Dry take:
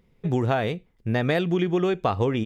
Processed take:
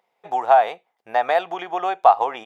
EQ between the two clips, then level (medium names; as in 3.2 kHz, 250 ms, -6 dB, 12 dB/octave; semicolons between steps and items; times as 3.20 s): dynamic bell 1 kHz, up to +6 dB, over -38 dBFS, Q 0.83; resonant high-pass 760 Hz, resonance Q 4.9; -2.5 dB